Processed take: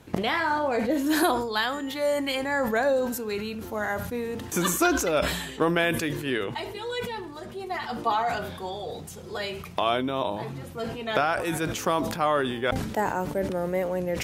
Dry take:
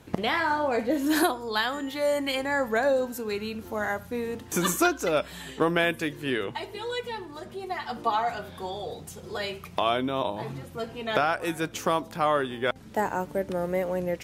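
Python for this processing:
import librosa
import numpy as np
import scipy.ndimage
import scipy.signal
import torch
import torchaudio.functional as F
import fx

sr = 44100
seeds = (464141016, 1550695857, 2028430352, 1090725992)

y = fx.sustainer(x, sr, db_per_s=50.0)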